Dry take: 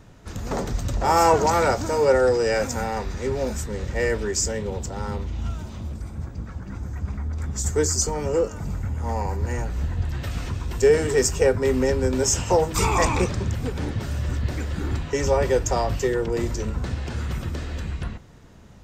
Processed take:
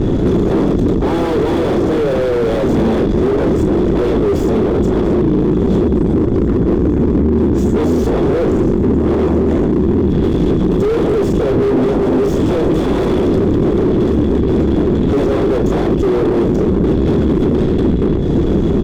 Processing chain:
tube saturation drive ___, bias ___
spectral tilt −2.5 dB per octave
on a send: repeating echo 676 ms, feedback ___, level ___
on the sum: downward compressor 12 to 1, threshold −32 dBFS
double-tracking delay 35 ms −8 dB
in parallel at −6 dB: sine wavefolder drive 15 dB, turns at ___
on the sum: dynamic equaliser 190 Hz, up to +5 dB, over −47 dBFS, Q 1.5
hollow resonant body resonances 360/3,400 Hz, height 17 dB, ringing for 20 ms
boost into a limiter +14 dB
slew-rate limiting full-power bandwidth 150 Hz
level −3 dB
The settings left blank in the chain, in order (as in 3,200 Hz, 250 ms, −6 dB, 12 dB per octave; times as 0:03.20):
24 dB, 0.5, 53%, −23 dB, −23 dBFS